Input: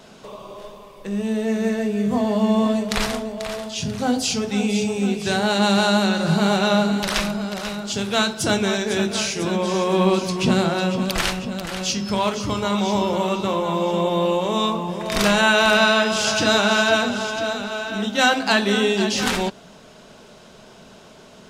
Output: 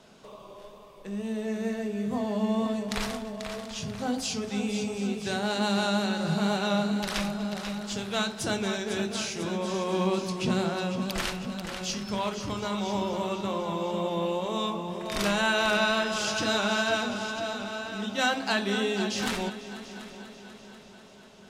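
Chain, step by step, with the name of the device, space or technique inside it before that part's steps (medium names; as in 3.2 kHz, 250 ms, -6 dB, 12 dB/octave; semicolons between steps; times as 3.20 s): multi-head tape echo (multi-head delay 245 ms, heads all three, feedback 57%, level -20 dB; wow and flutter 19 cents); trim -9 dB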